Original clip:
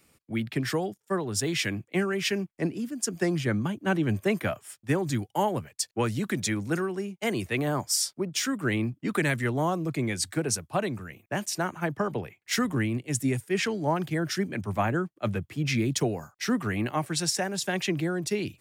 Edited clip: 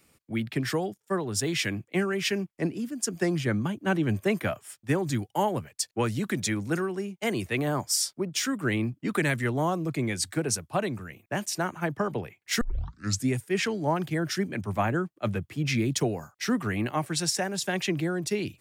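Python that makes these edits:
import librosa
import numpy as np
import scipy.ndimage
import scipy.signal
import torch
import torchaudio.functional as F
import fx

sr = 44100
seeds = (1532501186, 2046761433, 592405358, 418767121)

y = fx.edit(x, sr, fx.tape_start(start_s=12.61, length_s=0.67), tone=tone)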